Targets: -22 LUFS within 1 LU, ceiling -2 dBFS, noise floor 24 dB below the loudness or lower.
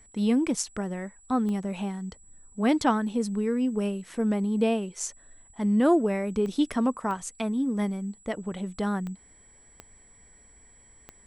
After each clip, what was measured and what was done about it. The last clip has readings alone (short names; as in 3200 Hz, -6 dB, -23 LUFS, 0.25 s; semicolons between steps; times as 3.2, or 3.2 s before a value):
clicks 6; steady tone 7800 Hz; tone level -55 dBFS; loudness -27.5 LUFS; peak -11.5 dBFS; loudness target -22.0 LUFS
-> de-click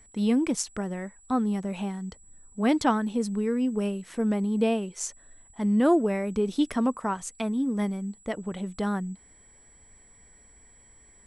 clicks 0; steady tone 7800 Hz; tone level -55 dBFS
-> notch 7800 Hz, Q 30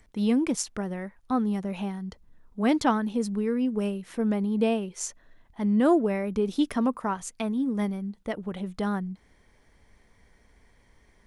steady tone none; loudness -27.5 LUFS; peak -11.0 dBFS; loudness target -22.0 LUFS
-> gain +5.5 dB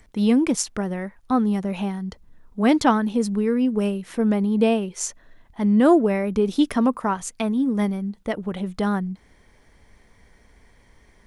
loudness -22.0 LUFS; peak -5.5 dBFS; noise floor -57 dBFS